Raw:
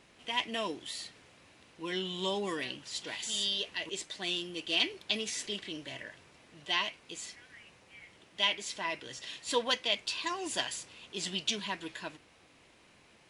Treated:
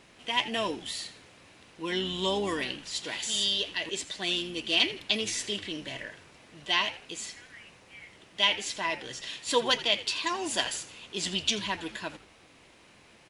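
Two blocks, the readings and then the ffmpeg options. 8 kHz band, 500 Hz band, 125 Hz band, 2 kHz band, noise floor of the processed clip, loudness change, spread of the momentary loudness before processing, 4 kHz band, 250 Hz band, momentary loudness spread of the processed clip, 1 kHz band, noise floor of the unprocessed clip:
+4.5 dB, +4.5 dB, +5.0 dB, +4.5 dB, -57 dBFS, +4.5 dB, 15 LU, +4.5 dB, +4.5 dB, 15 LU, +4.5 dB, -62 dBFS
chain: -filter_complex "[0:a]asplit=4[s0][s1][s2][s3];[s1]adelay=82,afreqshift=-110,volume=0.168[s4];[s2]adelay=164,afreqshift=-220,volume=0.0589[s5];[s3]adelay=246,afreqshift=-330,volume=0.0207[s6];[s0][s4][s5][s6]amix=inputs=4:normalize=0,volume=1.68"

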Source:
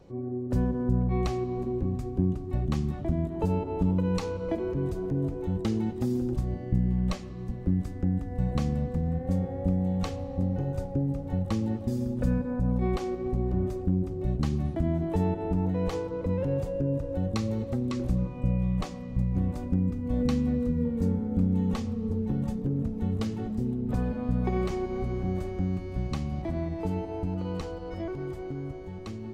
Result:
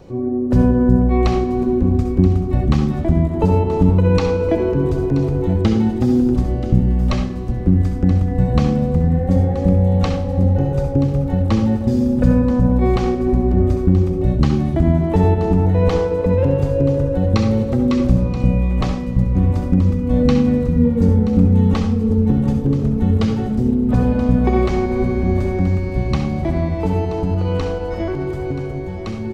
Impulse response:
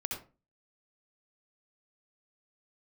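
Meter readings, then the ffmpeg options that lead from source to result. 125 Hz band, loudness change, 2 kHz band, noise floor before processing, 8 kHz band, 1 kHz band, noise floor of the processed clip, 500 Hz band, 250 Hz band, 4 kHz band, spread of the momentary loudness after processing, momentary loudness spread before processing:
+12.5 dB, +12.5 dB, +13.0 dB, -38 dBFS, no reading, +12.5 dB, -23 dBFS, +13.0 dB, +12.0 dB, +11.0 dB, 5 LU, 5 LU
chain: -filter_complex "[0:a]aecho=1:1:979:0.178,asplit=2[s0][s1];[1:a]atrim=start_sample=2205[s2];[s1][s2]afir=irnorm=-1:irlink=0,volume=0.944[s3];[s0][s3]amix=inputs=2:normalize=0,acrossover=split=5900[s4][s5];[s5]acompressor=threshold=0.001:ratio=4:attack=1:release=60[s6];[s4][s6]amix=inputs=2:normalize=0,volume=2.11"

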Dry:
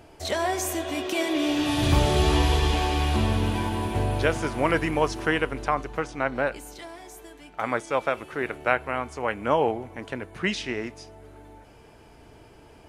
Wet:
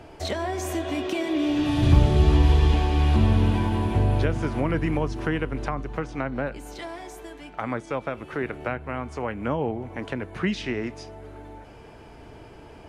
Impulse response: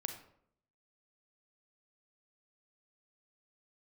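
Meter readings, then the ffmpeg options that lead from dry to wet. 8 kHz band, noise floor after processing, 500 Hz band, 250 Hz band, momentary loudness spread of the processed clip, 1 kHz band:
-7.5 dB, -46 dBFS, -2.5 dB, +2.0 dB, 18 LU, -4.0 dB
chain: -filter_complex "[0:a]lowpass=f=3800:p=1,acrossover=split=280[s0][s1];[s1]acompressor=threshold=0.0178:ratio=4[s2];[s0][s2]amix=inputs=2:normalize=0,volume=1.88"

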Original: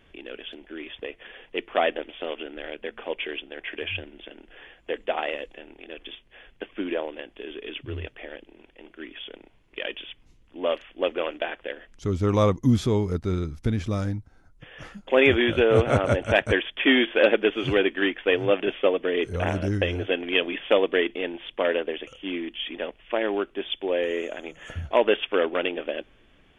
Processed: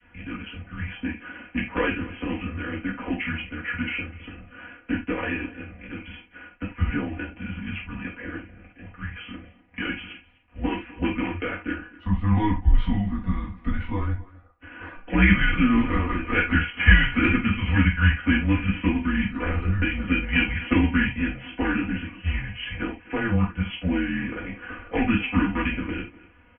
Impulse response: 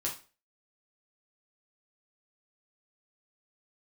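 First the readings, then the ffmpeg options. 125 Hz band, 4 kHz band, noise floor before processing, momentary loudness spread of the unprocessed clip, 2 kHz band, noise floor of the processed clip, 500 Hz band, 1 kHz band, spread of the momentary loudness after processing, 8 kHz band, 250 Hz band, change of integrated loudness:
+4.5 dB, -4.0 dB, -58 dBFS, 20 LU, +3.0 dB, -54 dBFS, -12.0 dB, -0.5 dB, 17 LU, no reading, +4.5 dB, 0.0 dB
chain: -filter_complex "[0:a]acrossover=split=290|390|1600[s0][s1][s2][s3];[s2]acompressor=threshold=0.02:ratio=6[s4];[s0][s1][s4][s3]amix=inputs=4:normalize=0,aecho=1:1:4.2:0.94,asplit=2[s5][s6];[s6]adelay=250,highpass=300,lowpass=3400,asoftclip=type=hard:threshold=0.2,volume=0.1[s7];[s5][s7]amix=inputs=2:normalize=0[s8];[1:a]atrim=start_sample=2205,atrim=end_sample=4410[s9];[s8][s9]afir=irnorm=-1:irlink=0,adynamicequalizer=threshold=0.0316:dfrequency=750:dqfactor=0.85:tfrequency=750:tqfactor=0.85:attack=5:release=100:ratio=0.375:range=2.5:mode=cutabove:tftype=bell,highpass=f=210:t=q:w=0.5412,highpass=f=210:t=q:w=1.307,lowpass=f=2800:t=q:w=0.5176,lowpass=f=2800:t=q:w=0.7071,lowpass=f=2800:t=q:w=1.932,afreqshift=-210"

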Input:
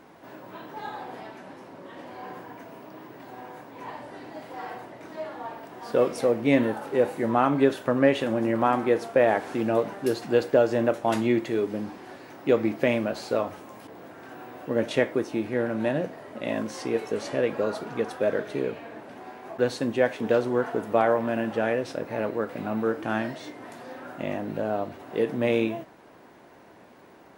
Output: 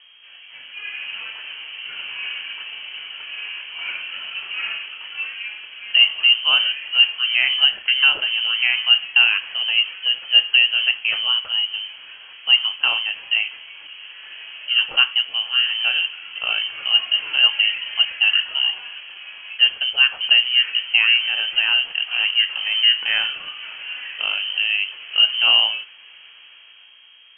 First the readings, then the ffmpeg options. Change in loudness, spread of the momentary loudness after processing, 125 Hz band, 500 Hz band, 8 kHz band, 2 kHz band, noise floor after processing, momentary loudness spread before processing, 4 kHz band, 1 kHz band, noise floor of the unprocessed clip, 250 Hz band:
+9.5 dB, 17 LU, under -25 dB, -23.0 dB, under -30 dB, +16.0 dB, -46 dBFS, 20 LU, +29.5 dB, -6.0 dB, -51 dBFS, under -30 dB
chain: -af "highpass=120,equalizer=f=480:t=o:w=0.3:g=6.5,dynaudnorm=f=150:g=13:m=3.76,aeval=exprs='val(0)+0.00398*(sin(2*PI*60*n/s)+sin(2*PI*2*60*n/s)/2+sin(2*PI*3*60*n/s)/3+sin(2*PI*4*60*n/s)/4+sin(2*PI*5*60*n/s)/5)':c=same,lowpass=f=2800:t=q:w=0.5098,lowpass=f=2800:t=q:w=0.6013,lowpass=f=2800:t=q:w=0.9,lowpass=f=2800:t=q:w=2.563,afreqshift=-3300,volume=0.75"

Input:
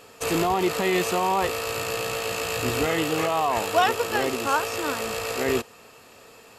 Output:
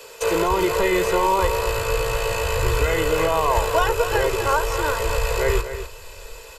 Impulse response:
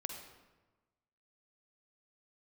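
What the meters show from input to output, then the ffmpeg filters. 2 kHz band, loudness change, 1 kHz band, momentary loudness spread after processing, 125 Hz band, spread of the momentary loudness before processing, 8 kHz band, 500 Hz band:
+3.0 dB, +3.5 dB, +2.5 dB, 6 LU, +7.5 dB, 5 LU, +1.5 dB, +5.0 dB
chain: -filter_complex "[0:a]equalizer=f=120:w=0.55:g=-13,bandreject=f=50:t=h:w=6,bandreject=f=100:t=h:w=6,aecho=1:1:2:0.84,asubboost=boost=4.5:cutoff=68,acrossover=split=130|890|2000[s0][s1][s2][s3];[s0]dynaudnorm=f=320:g=3:m=5.96[s4];[s2]flanger=delay=17.5:depth=7.9:speed=2.6[s5];[s4][s1][s5][s3]amix=inputs=4:normalize=0,acrossover=split=910|1900|5500[s6][s7][s8][s9];[s6]acompressor=threshold=0.0631:ratio=4[s10];[s7]acompressor=threshold=0.0251:ratio=4[s11];[s8]acompressor=threshold=0.00631:ratio=4[s12];[s9]acompressor=threshold=0.00631:ratio=4[s13];[s10][s11][s12][s13]amix=inputs=4:normalize=0,aecho=1:1:249:0.299,volume=2.24"

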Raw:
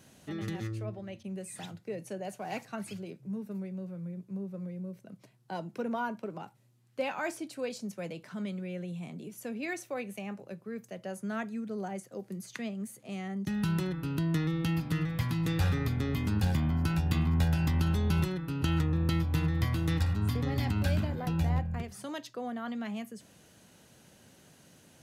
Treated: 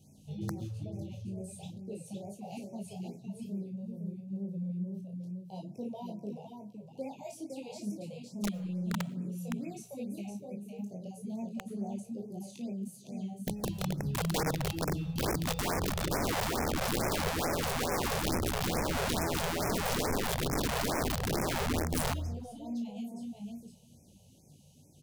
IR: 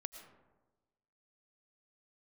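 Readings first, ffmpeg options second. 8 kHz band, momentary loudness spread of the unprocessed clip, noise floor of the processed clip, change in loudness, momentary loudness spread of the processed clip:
+9.0 dB, 13 LU, -58 dBFS, -2.0 dB, 12 LU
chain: -filter_complex "[0:a]flanger=delay=19.5:depth=2.8:speed=0.49,asuperstop=centerf=1500:order=8:qfactor=0.85,bass=f=250:g=10,treble=f=4000:g=2,asplit=2[s0][s1];[s1]adelay=34,volume=0.473[s2];[s0][s2]amix=inputs=2:normalize=0,aecho=1:1:511:0.562,aeval=exprs='(mod(11.9*val(0)+1,2)-1)/11.9':c=same,asplit=2[s3][s4];[1:a]atrim=start_sample=2205[s5];[s4][s5]afir=irnorm=-1:irlink=0,volume=0.398[s6];[s3][s6]amix=inputs=2:normalize=0,afftfilt=real='re*(1-between(b*sr/1024,260*pow(3700/260,0.5+0.5*sin(2*PI*2.3*pts/sr))/1.41,260*pow(3700/260,0.5+0.5*sin(2*PI*2.3*pts/sr))*1.41))':imag='im*(1-between(b*sr/1024,260*pow(3700/260,0.5+0.5*sin(2*PI*2.3*pts/sr))/1.41,260*pow(3700/260,0.5+0.5*sin(2*PI*2.3*pts/sr))*1.41))':win_size=1024:overlap=0.75,volume=0.473"

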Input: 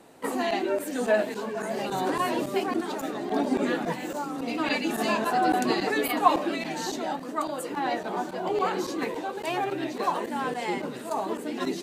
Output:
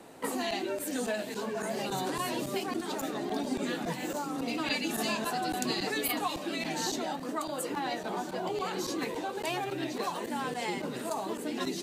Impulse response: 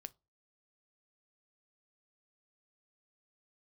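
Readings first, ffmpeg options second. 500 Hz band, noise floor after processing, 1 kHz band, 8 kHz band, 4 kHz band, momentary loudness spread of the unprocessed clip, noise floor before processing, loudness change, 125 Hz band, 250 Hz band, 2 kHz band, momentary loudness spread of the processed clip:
-6.5 dB, -39 dBFS, -7.5 dB, +2.0 dB, 0.0 dB, 8 LU, -38 dBFS, -5.0 dB, -1.5 dB, -5.0 dB, -4.5 dB, 4 LU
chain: -filter_complex "[0:a]acrossover=split=150|3000[s0][s1][s2];[s1]acompressor=threshold=0.02:ratio=6[s3];[s0][s3][s2]amix=inputs=3:normalize=0,volume=1.26"

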